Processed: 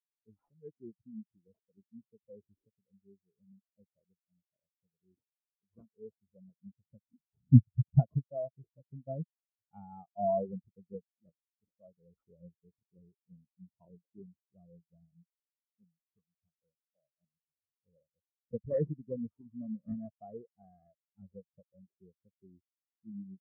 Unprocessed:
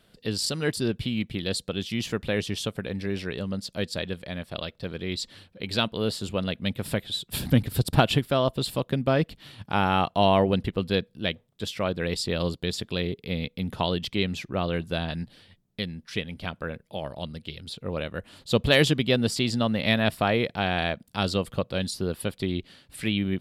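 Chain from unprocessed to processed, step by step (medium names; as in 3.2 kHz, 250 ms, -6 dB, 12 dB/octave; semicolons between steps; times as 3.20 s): sample-rate reducer 3.7 kHz, jitter 0%; low-pass that closes with the level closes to 2.4 kHz, closed at -17.5 dBFS; spectral contrast expander 4:1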